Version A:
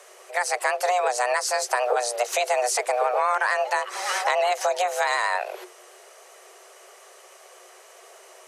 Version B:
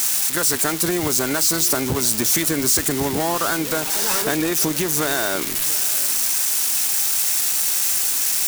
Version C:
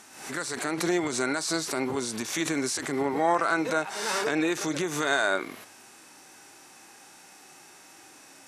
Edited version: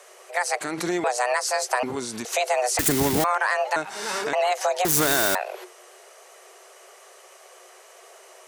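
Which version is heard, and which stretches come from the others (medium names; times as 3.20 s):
A
0.61–1.04 s: from C
1.83–2.25 s: from C
2.79–3.24 s: from B
3.76–4.33 s: from C
4.85–5.35 s: from B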